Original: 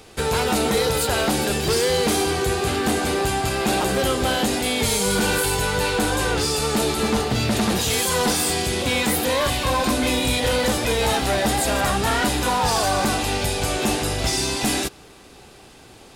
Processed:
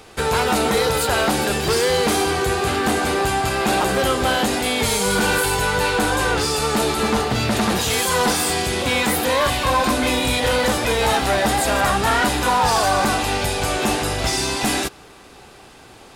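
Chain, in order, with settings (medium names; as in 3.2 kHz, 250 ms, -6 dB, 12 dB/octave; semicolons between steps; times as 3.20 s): peaking EQ 1.2 kHz +5 dB 2 oct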